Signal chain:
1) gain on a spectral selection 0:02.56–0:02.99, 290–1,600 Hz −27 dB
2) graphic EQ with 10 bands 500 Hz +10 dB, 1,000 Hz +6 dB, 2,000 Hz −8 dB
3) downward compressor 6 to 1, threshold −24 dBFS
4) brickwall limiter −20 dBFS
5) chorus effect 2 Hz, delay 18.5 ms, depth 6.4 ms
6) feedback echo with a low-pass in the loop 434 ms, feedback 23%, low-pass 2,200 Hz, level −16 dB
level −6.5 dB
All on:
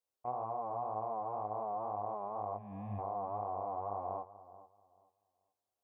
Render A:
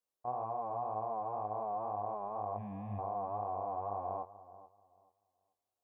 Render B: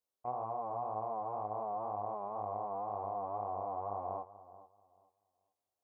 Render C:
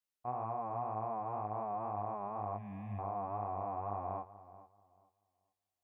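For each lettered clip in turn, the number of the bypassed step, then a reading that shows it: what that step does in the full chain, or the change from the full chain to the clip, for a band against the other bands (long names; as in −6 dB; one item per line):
3, average gain reduction 11.0 dB
1, 125 Hz band −4.5 dB
2, 500 Hz band −4.0 dB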